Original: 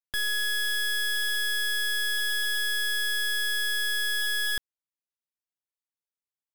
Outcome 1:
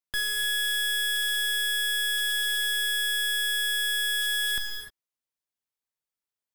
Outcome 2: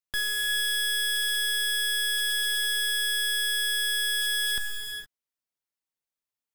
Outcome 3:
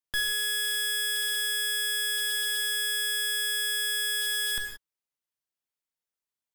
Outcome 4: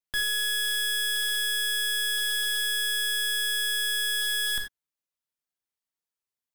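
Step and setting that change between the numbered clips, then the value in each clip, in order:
reverb whose tail is shaped and stops, gate: 330, 490, 200, 110 milliseconds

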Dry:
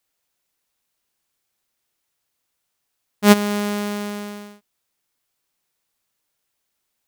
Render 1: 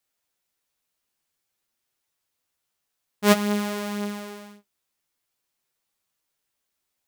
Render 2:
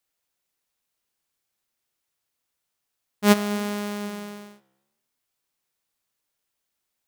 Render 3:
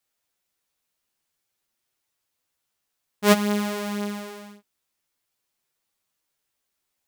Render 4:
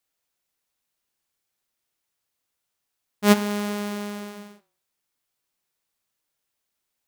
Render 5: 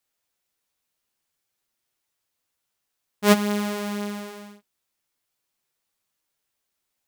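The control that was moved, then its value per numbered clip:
flanger, regen: +33, +91, +5, −80, −22%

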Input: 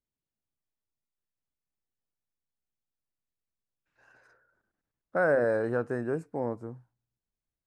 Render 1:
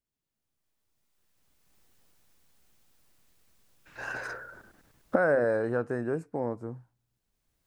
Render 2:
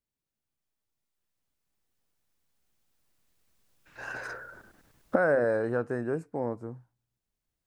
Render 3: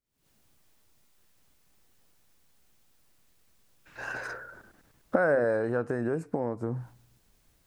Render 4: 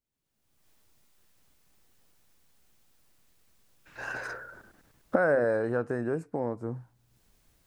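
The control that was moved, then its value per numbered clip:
camcorder AGC, rising by: 14, 5.6, 90, 36 dB per second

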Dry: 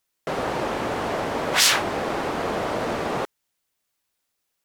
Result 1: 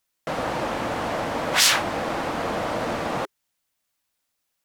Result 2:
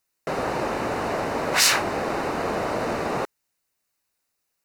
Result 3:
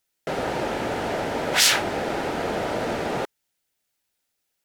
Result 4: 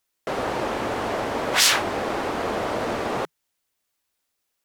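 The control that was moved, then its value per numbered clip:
notch filter, centre frequency: 400, 3,300, 1,100, 160 Hertz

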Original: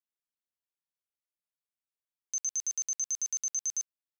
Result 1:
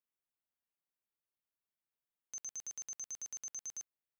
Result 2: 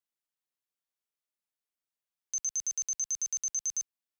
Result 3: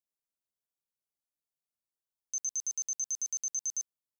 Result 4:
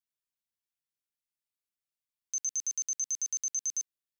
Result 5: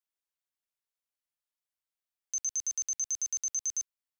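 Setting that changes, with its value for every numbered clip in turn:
parametric band, centre frequency: 6,000, 65, 2,100, 730, 190 Hertz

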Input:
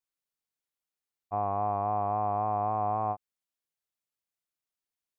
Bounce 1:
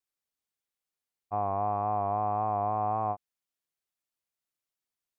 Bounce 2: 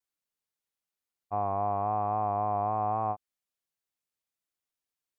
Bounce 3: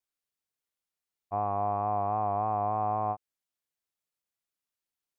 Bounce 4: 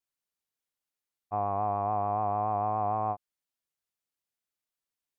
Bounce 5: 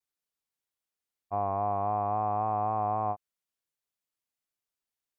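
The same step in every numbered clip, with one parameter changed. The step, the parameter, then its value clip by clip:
pitch vibrato, speed: 1.8, 1.1, 2.9, 6.9, 0.51 Hertz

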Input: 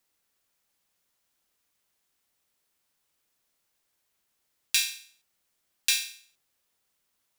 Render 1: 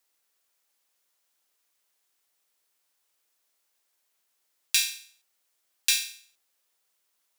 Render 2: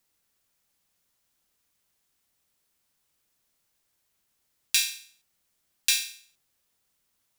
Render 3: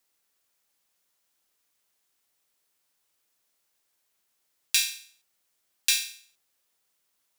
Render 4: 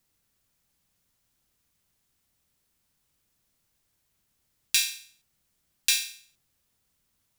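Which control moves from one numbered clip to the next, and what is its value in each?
bass and treble, bass: −14, +5, −5, +14 decibels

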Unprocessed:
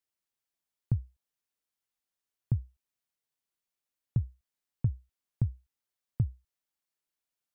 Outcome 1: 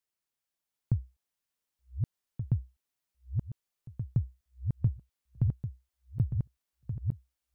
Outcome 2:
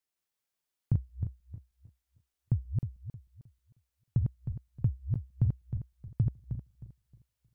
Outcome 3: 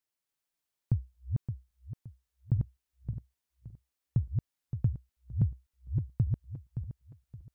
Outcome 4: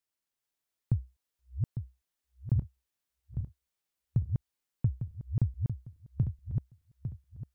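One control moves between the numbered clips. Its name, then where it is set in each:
feedback delay that plays each chunk backwards, delay time: 739, 156, 285, 426 milliseconds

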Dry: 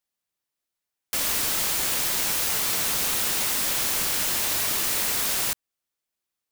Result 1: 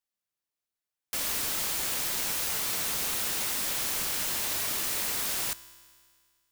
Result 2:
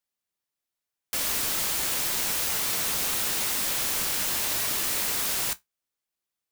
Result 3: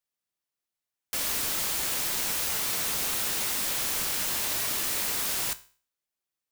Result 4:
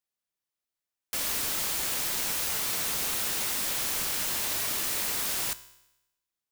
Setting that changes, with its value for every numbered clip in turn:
tuned comb filter, decay: 2, 0.15, 0.42, 0.9 seconds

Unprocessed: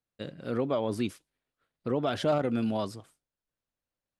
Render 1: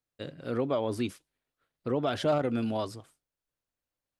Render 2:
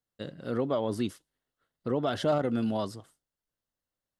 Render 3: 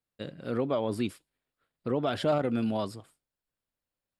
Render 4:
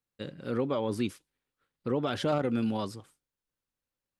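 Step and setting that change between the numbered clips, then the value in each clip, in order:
notch filter, centre frequency: 200, 2,400, 6,100, 660 Hertz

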